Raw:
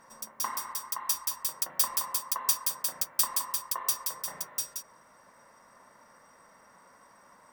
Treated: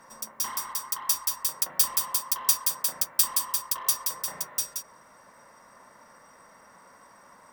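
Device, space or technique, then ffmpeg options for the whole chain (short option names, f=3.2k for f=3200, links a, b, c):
one-band saturation: -filter_complex "[0:a]acrossover=split=200|2300[a][b][c];[b]asoftclip=type=tanh:threshold=-38dB[d];[a][d][c]amix=inputs=3:normalize=0,volume=4dB"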